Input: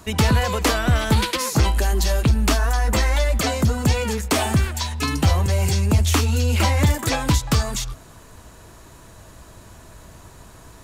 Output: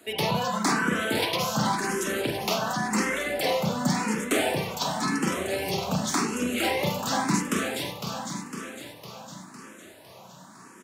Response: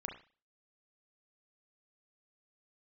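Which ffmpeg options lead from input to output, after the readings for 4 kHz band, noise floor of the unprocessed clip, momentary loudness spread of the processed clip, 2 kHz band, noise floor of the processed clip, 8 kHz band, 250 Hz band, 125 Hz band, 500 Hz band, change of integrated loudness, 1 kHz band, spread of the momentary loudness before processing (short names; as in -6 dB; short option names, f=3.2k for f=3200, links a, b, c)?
-4.0 dB, -45 dBFS, 15 LU, -2.5 dB, -49 dBFS, -5.0 dB, -3.0 dB, -15.0 dB, -2.5 dB, -6.5 dB, -2.0 dB, 3 LU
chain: -filter_complex "[0:a]highpass=f=170:w=0.5412,highpass=f=170:w=1.3066,aecho=1:1:506|1012|1518|2024|2530|3036|3542|4048:0.447|0.268|0.161|0.0965|0.0579|0.0347|0.0208|0.0125[a];[1:a]atrim=start_sample=2205,asetrate=41895,aresample=44100[b];[a][b]afir=irnorm=-1:irlink=0,asplit=2[c][d];[d]afreqshift=0.91[e];[c][e]amix=inputs=2:normalize=1"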